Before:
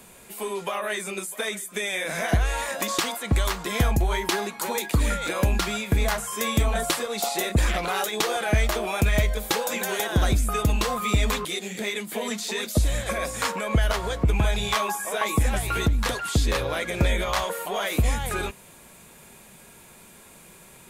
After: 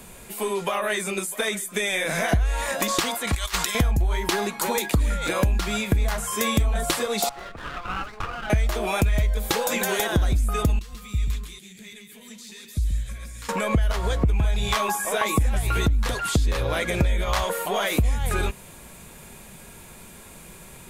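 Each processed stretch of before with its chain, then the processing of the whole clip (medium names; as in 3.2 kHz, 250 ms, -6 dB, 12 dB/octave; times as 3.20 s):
3.27–3.75 s: tilt shelf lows -10 dB, about 890 Hz + compressor with a negative ratio -29 dBFS, ratio -0.5
7.29–8.50 s: band-pass filter 1.3 kHz, Q 3.8 + sliding maximum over 9 samples
10.79–13.49 s: amplifier tone stack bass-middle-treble 6-0-2 + delay 135 ms -6.5 dB
whole clip: bass shelf 100 Hz +11 dB; compression 6:1, threshold -22 dBFS; trim +3.5 dB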